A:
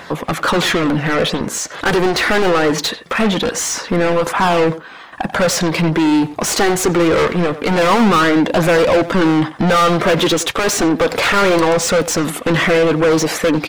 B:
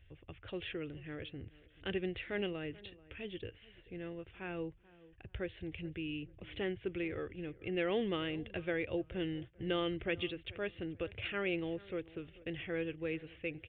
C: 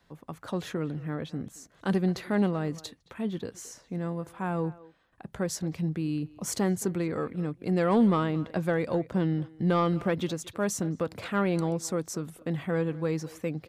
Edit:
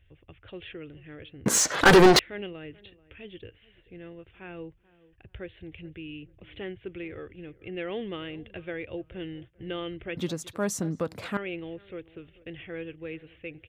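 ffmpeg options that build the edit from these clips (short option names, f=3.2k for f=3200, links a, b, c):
-filter_complex "[1:a]asplit=3[a][b][c];[a]atrim=end=1.462[d];[0:a]atrim=start=1.458:end=2.192[e];[b]atrim=start=2.188:end=10.172[f];[2:a]atrim=start=10.168:end=11.372[g];[c]atrim=start=11.368[h];[d][e]acrossfade=d=0.004:c1=hsin:c2=hsin[i];[i][f]acrossfade=d=0.004:c1=hsin:c2=hsin[j];[j][g]acrossfade=d=0.004:c1=hsin:c2=hsin[k];[k][h]acrossfade=d=0.004:c1=hsin:c2=hsin"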